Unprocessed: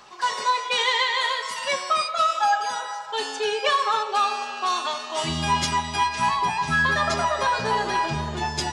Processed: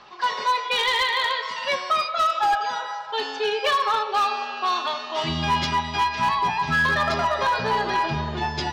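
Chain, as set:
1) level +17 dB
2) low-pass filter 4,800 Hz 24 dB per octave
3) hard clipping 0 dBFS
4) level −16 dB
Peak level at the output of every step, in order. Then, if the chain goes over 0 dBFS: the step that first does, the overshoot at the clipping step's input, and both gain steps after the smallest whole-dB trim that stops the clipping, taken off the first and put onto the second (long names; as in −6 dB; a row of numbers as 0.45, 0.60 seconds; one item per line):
+7.5, +7.5, 0.0, −16.0 dBFS
step 1, 7.5 dB
step 1 +9 dB, step 4 −8 dB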